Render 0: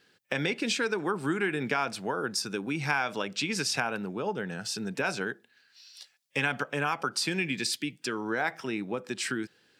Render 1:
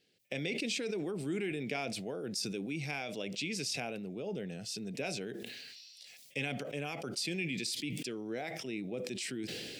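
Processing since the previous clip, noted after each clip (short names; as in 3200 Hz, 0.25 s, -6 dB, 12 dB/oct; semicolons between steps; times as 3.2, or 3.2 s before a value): band shelf 1200 Hz -15.5 dB 1.2 oct; sustainer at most 24 dB/s; gain -7 dB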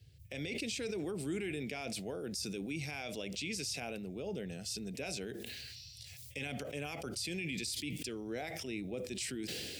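high shelf 6200 Hz +9 dB; limiter -27.5 dBFS, peak gain reduction 9 dB; band noise 61–130 Hz -57 dBFS; gain -1.5 dB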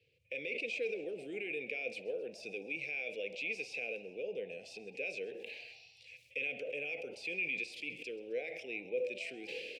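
double band-pass 1100 Hz, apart 2.3 oct; frequency-shifting echo 0.132 s, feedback 56%, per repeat +80 Hz, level -20 dB; spring tank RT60 1 s, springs 48 ms, chirp 50 ms, DRR 16 dB; gain +8 dB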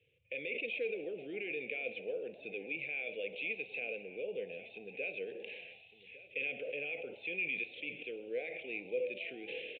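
echo 1.156 s -17 dB; downsampling 8000 Hz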